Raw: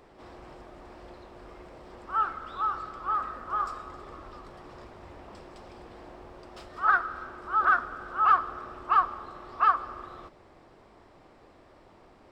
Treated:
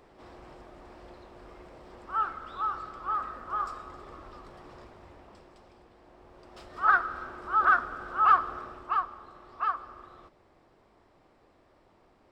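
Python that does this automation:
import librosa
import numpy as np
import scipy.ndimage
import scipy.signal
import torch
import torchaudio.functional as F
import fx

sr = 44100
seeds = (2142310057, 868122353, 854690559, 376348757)

y = fx.gain(x, sr, db=fx.line((4.72, -2.0), (5.98, -11.0), (6.86, 0.5), (8.58, 0.5), (9.05, -7.0)))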